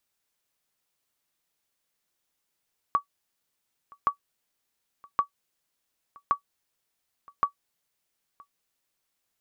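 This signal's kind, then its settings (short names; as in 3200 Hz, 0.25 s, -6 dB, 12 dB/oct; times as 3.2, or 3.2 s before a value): sonar ping 1140 Hz, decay 0.10 s, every 1.12 s, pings 5, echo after 0.97 s, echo -26.5 dB -13 dBFS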